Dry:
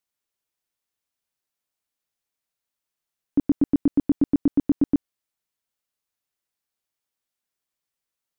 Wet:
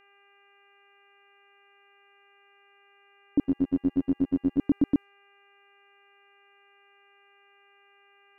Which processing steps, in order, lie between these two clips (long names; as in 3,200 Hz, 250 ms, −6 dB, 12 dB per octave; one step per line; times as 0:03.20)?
low-pass that shuts in the quiet parts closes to 580 Hz, open at −18 dBFS
hum with harmonics 400 Hz, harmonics 7, −58 dBFS 0 dB per octave
0:03.44–0:04.59: phases set to zero 90.1 Hz
level −3 dB